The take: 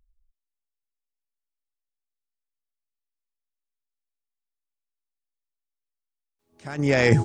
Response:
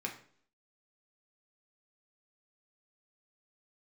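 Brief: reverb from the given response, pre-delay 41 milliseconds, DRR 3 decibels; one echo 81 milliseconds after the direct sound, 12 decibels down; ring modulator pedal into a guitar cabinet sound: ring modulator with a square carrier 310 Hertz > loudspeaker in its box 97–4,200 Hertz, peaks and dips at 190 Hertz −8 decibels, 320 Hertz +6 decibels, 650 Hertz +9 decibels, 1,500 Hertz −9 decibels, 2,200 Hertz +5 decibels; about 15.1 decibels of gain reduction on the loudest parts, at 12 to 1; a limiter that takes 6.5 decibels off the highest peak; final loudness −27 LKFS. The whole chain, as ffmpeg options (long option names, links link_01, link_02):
-filter_complex "[0:a]acompressor=threshold=-27dB:ratio=12,alimiter=level_in=0.5dB:limit=-24dB:level=0:latency=1,volume=-0.5dB,aecho=1:1:81:0.251,asplit=2[link_01][link_02];[1:a]atrim=start_sample=2205,adelay=41[link_03];[link_02][link_03]afir=irnorm=-1:irlink=0,volume=-5dB[link_04];[link_01][link_04]amix=inputs=2:normalize=0,aeval=exprs='val(0)*sgn(sin(2*PI*310*n/s))':channel_layout=same,highpass=97,equalizer=frequency=190:width_type=q:width=4:gain=-8,equalizer=frequency=320:width_type=q:width=4:gain=6,equalizer=frequency=650:width_type=q:width=4:gain=9,equalizer=frequency=1500:width_type=q:width=4:gain=-9,equalizer=frequency=2200:width_type=q:width=4:gain=5,lowpass=frequency=4200:width=0.5412,lowpass=frequency=4200:width=1.3066,volume=6dB"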